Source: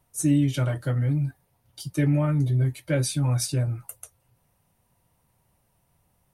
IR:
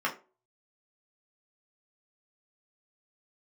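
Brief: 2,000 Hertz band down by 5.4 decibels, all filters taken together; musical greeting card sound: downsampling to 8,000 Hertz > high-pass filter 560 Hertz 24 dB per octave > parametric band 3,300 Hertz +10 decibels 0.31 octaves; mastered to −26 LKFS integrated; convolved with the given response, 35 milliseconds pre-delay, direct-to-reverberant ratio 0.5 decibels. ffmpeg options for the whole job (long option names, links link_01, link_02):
-filter_complex "[0:a]equalizer=frequency=2000:width_type=o:gain=-8,asplit=2[link_01][link_02];[1:a]atrim=start_sample=2205,adelay=35[link_03];[link_02][link_03]afir=irnorm=-1:irlink=0,volume=-10dB[link_04];[link_01][link_04]amix=inputs=2:normalize=0,aresample=8000,aresample=44100,highpass=frequency=560:width=0.5412,highpass=frequency=560:width=1.3066,equalizer=frequency=3300:width_type=o:width=0.31:gain=10,volume=11dB"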